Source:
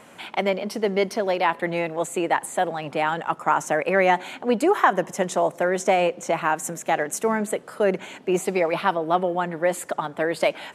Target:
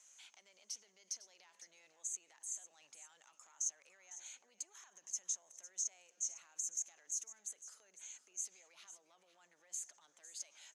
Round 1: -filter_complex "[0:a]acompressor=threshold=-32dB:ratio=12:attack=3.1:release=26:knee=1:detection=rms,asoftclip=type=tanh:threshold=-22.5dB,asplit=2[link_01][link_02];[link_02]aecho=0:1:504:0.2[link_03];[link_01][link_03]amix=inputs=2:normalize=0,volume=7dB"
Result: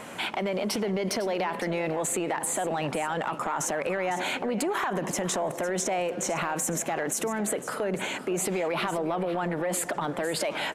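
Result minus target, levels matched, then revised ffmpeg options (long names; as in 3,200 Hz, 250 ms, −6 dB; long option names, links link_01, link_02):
8,000 Hz band −7.0 dB
-filter_complex "[0:a]acompressor=threshold=-32dB:ratio=12:attack=3.1:release=26:knee=1:detection=rms,bandpass=frequency=6400:width_type=q:width=13:csg=0,asoftclip=type=tanh:threshold=-22.5dB,asplit=2[link_01][link_02];[link_02]aecho=0:1:504:0.2[link_03];[link_01][link_03]amix=inputs=2:normalize=0,volume=7dB"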